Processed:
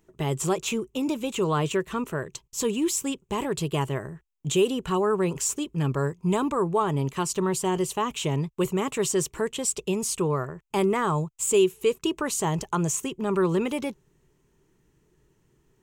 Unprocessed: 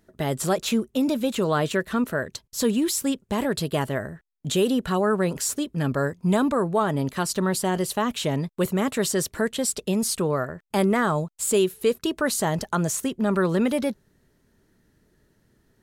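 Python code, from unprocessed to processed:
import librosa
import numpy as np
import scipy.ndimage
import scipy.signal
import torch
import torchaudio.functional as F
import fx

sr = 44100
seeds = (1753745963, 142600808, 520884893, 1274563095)

y = fx.ripple_eq(x, sr, per_octave=0.71, db=9)
y = F.gain(torch.from_numpy(y), -3.0).numpy()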